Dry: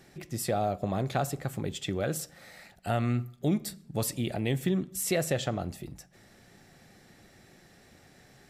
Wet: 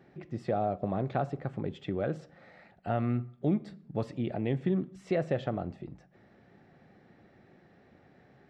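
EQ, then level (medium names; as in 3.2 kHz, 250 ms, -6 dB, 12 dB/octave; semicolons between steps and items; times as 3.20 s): high-pass 150 Hz 6 dB/octave; tape spacing loss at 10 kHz 42 dB; +2.0 dB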